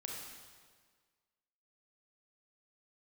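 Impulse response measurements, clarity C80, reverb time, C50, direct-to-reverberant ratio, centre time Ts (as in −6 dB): 2.5 dB, 1.6 s, 0.0 dB, −1.5 dB, 81 ms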